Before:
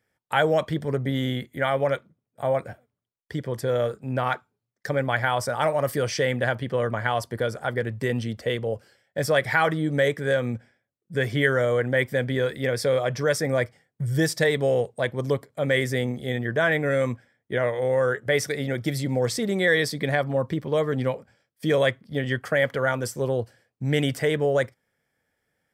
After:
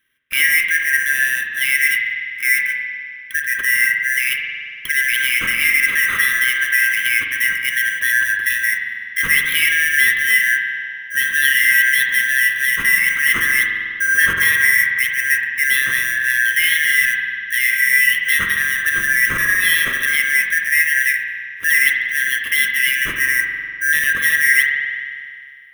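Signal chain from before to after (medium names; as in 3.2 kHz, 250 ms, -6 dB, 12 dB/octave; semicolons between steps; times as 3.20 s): four frequency bands reordered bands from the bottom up 4123; high-pass 1 kHz 24 dB/octave; peaking EQ 12 kHz +5 dB; in parallel at 0 dB: peak limiter -18.5 dBFS, peak gain reduction 11.5 dB; on the sum: sample-rate reducer 7.5 kHz, jitter 0%; static phaser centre 1.9 kHz, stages 4; spring tank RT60 2.2 s, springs 45 ms, chirp 30 ms, DRR 2 dB; trim +3 dB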